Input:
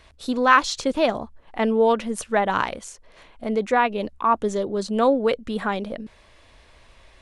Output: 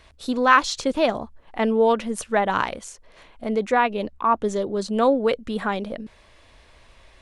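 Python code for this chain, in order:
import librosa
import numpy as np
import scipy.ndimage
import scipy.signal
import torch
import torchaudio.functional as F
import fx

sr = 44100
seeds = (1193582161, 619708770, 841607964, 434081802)

y = fx.lowpass(x, sr, hz=4000.0, slope=6, at=(4.03, 4.44))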